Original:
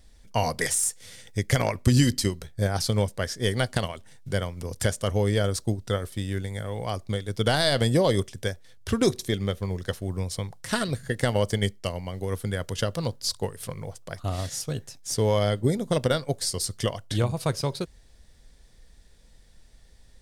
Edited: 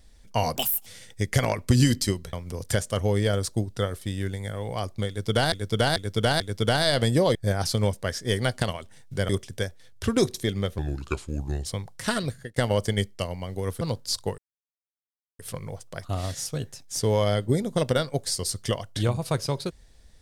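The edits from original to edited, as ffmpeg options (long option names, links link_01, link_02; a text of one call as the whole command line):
ffmpeg -i in.wav -filter_complex "[0:a]asplit=14[link_01][link_02][link_03][link_04][link_05][link_06][link_07][link_08][link_09][link_10][link_11][link_12][link_13][link_14];[link_01]atrim=end=0.564[link_15];[link_02]atrim=start=0.56:end=1.03,asetpts=PTS-STARTPTS,asetrate=68796,aresample=44100[link_16];[link_03]atrim=start=1.026:end=2.502[link_17];[link_04]atrim=start=4.438:end=7.632[link_18];[link_05]atrim=start=7.188:end=7.632[link_19];[link_06]atrim=start=7.188:end=7.632[link_20];[link_07]atrim=start=7.188:end=8.142[link_21];[link_08]atrim=start=2.498:end=4.442[link_22];[link_09]atrim=start=8.138:end=9.634[link_23];[link_10]atrim=start=9.63:end=10.3,asetpts=PTS-STARTPTS,asetrate=33957,aresample=44100[link_24];[link_11]atrim=start=10.296:end=11.21,asetpts=PTS-STARTPTS,afade=type=out:start_time=0.594:duration=0.32[link_25];[link_12]atrim=start=11.21:end=12.462,asetpts=PTS-STARTPTS,afade=type=in:duration=0.004:curve=hsin[link_26];[link_13]atrim=start=12.968:end=13.54,asetpts=PTS-STARTPTS,afade=type=out:start_time=0.568:duration=0.004:curve=hsin,apad=pad_dur=1.01[link_27];[link_14]atrim=start=13.54,asetpts=PTS-STARTPTS,afade=type=in:duration=0.004:curve=hsin[link_28];[link_15][link_16]acrossfade=duration=0.004:curve1=hsin:curve2=hsin[link_29];[link_29][link_17]acrossfade=duration=0.004:curve1=hsin:curve2=hsin[link_30];[link_30][link_18]acrossfade=duration=0.004:curve1=hsin:curve2=hsin[link_31];[link_31][link_19]acrossfade=duration=0.004:curve1=hsin:curve2=hsin[link_32];[link_32][link_20]acrossfade=duration=0.004:curve1=hsin:curve2=hsin[link_33];[link_33][link_21]acrossfade=duration=0.004:curve1=hsin:curve2=hsin[link_34];[link_34][link_22]acrossfade=duration=0.004:curve1=hsin:curve2=hsin[link_35];[link_35][link_23]acrossfade=duration=0.004:curve1=hsin:curve2=hsin[link_36];[link_36][link_24]acrossfade=duration=0.004:curve1=hsin:curve2=hsin[link_37];[link_25][link_26]concat=n=2:v=0:a=1[link_38];[link_37][link_38]acrossfade=duration=0.004:curve1=hsin:curve2=hsin[link_39];[link_27][link_28]concat=n=2:v=0:a=1[link_40];[link_39][link_40]acrossfade=duration=0.004:curve1=hsin:curve2=hsin" out.wav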